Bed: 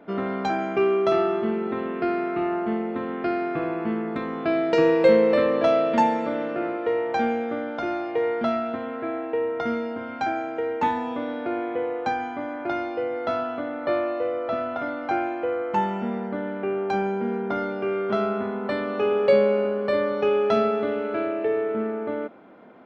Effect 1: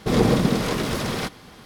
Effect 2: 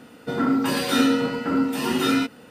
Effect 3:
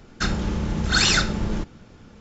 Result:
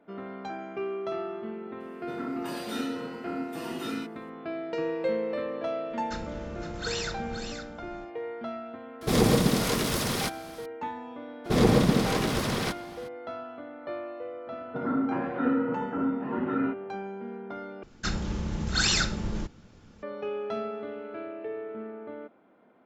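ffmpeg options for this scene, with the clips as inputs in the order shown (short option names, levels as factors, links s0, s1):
-filter_complex "[2:a]asplit=2[s0][s1];[3:a]asplit=2[s2][s3];[1:a]asplit=2[s4][s5];[0:a]volume=0.251[s6];[s2]aecho=1:1:512:0.398[s7];[s4]aemphasis=mode=production:type=cd[s8];[s1]lowpass=f=1600:w=0.5412,lowpass=f=1600:w=1.3066[s9];[s3]bass=f=250:g=1,treble=f=4000:g=3[s10];[s6]asplit=2[s11][s12];[s11]atrim=end=17.834[s13];[s10]atrim=end=2.2,asetpts=PTS-STARTPTS,volume=0.447[s14];[s12]atrim=start=20.026[s15];[s0]atrim=end=2.5,asetpts=PTS-STARTPTS,volume=0.2,afade=t=in:d=0.004:c=hsin,afade=t=out:st=2.496:d=0.004:c=hsin,adelay=1800[s16];[s7]atrim=end=2.2,asetpts=PTS-STARTPTS,volume=0.178,afade=t=in:d=0.004:c=hsin,afade=t=out:st=2.196:d=0.004:c=hsin,adelay=5900[s17];[s8]atrim=end=1.65,asetpts=PTS-STARTPTS,volume=0.668,afade=t=in:d=0.004:c=hsin,afade=t=out:st=1.646:d=0.004:c=hsin,adelay=9010[s18];[s5]atrim=end=1.65,asetpts=PTS-STARTPTS,volume=0.75,afade=t=in:d=0.02,afade=t=out:st=1.63:d=0.02,adelay=11440[s19];[s9]atrim=end=2.5,asetpts=PTS-STARTPTS,volume=0.473,afade=t=in:d=0.004:c=hsin,afade=t=out:st=2.496:d=0.004:c=hsin,adelay=14470[s20];[s13][s14]acrossfade=d=0.004:c1=hsin:c2=hsin[s21];[s21][s15]acrossfade=d=0.004:c1=hsin:c2=hsin[s22];[s22][s16][s17][s18][s19][s20]amix=inputs=6:normalize=0"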